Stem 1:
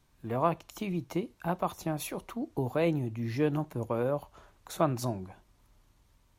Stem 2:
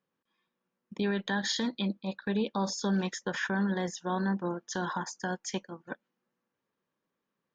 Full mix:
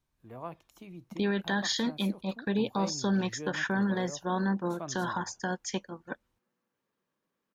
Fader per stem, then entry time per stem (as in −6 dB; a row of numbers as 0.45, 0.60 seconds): −13.5, +1.0 decibels; 0.00, 0.20 seconds